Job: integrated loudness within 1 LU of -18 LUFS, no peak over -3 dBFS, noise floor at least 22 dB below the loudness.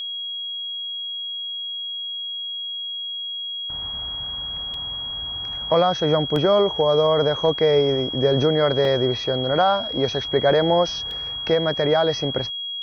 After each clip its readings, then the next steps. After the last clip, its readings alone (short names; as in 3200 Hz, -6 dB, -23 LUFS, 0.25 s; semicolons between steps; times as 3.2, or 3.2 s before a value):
dropouts 4; longest dropout 1.8 ms; steady tone 3300 Hz; tone level -27 dBFS; loudness -22.0 LUFS; peak -7.0 dBFS; loudness target -18.0 LUFS
-> interpolate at 4.74/6.36/8.85/11.11, 1.8 ms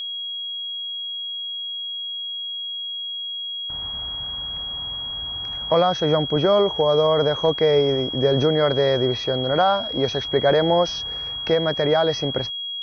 dropouts 0; steady tone 3300 Hz; tone level -27 dBFS
-> notch 3300 Hz, Q 30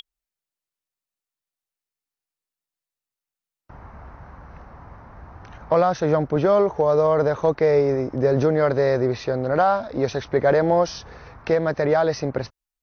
steady tone none; loudness -20.5 LUFS; peak -8.0 dBFS; loudness target -18.0 LUFS
-> gain +2.5 dB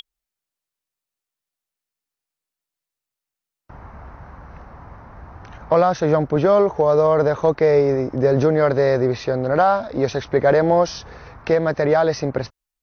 loudness -18.0 LUFS; peak -5.5 dBFS; noise floor -87 dBFS